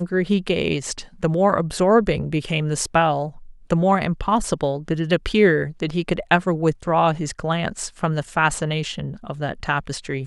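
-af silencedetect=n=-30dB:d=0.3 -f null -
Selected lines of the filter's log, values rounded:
silence_start: 3.29
silence_end: 3.70 | silence_duration: 0.41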